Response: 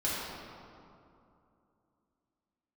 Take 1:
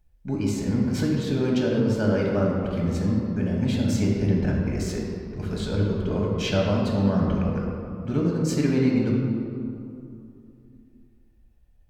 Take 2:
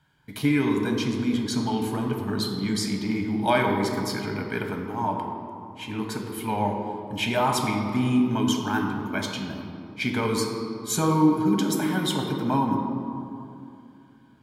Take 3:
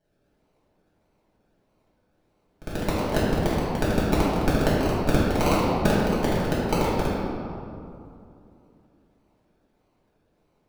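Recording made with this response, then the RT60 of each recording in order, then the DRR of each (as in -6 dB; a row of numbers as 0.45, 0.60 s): 3; 2.7, 2.7, 2.7 s; -2.5, 2.0, -9.0 dB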